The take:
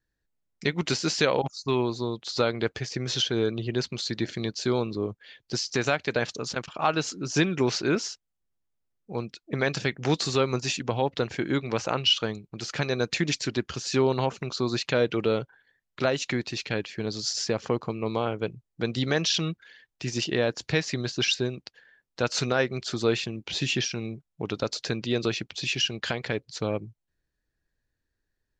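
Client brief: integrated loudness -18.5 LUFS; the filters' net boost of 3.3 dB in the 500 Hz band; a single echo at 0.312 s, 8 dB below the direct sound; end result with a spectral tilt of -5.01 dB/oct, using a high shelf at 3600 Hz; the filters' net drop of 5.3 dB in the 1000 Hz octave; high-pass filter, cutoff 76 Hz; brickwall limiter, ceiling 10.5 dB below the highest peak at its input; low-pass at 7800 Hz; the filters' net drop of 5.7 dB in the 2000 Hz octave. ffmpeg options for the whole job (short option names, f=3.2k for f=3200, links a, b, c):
-af "highpass=76,lowpass=7.8k,equalizer=f=500:t=o:g=6,equalizer=f=1k:t=o:g=-8.5,equalizer=f=2k:t=o:g=-3.5,highshelf=f=3.6k:g=-5.5,alimiter=limit=-19.5dB:level=0:latency=1,aecho=1:1:312:0.398,volume=12.5dB"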